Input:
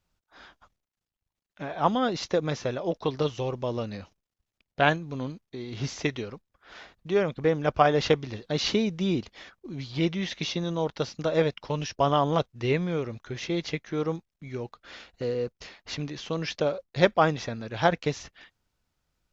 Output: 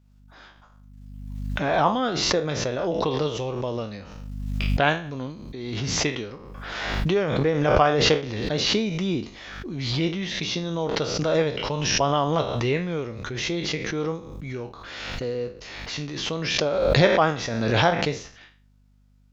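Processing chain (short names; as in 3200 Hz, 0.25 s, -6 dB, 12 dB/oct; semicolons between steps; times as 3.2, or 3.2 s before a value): spectral trails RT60 0.36 s; hum 50 Hz, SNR 32 dB; backwards sustainer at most 32 dB/s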